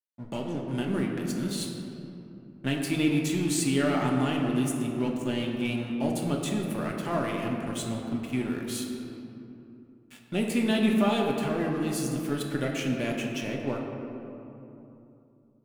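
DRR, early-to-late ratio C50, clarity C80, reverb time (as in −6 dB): −1.0 dB, 2.5 dB, 3.5 dB, 2.9 s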